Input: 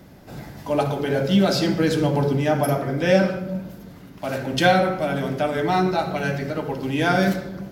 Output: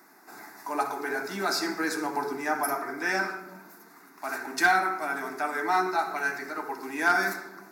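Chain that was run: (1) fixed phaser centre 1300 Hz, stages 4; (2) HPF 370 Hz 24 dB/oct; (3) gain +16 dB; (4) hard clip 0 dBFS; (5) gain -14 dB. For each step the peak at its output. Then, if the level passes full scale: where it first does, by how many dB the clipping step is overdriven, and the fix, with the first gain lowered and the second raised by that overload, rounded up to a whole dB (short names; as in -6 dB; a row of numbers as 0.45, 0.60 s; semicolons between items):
-8.0, -11.0, +5.0, 0.0, -14.0 dBFS; step 3, 5.0 dB; step 3 +11 dB, step 5 -9 dB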